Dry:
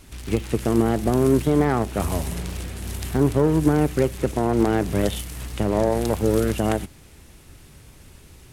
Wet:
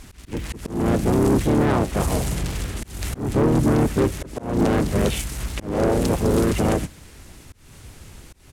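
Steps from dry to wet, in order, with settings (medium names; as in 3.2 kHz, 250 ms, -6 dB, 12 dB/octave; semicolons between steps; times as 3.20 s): harmony voices -5 st -1 dB, -3 st -6 dB, +3 st -13 dB; valve stage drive 15 dB, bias 0.25; slow attack 236 ms; trim +2 dB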